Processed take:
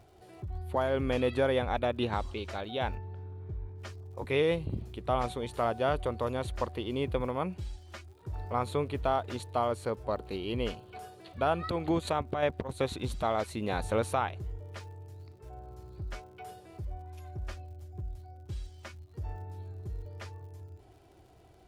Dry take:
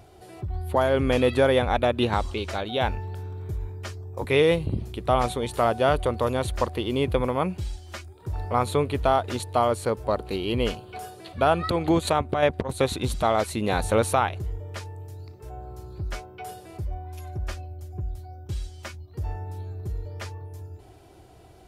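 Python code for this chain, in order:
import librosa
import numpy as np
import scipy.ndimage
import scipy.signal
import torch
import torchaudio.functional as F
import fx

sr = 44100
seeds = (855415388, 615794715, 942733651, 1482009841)

y = fx.high_shelf(x, sr, hz=7400.0, db=-7.5)
y = fx.dmg_crackle(y, sr, seeds[0], per_s=97.0, level_db=-47.0)
y = fx.spacing_loss(y, sr, db_at_10k=25, at=(2.97, 3.78), fade=0.02)
y = y * librosa.db_to_amplitude(-7.5)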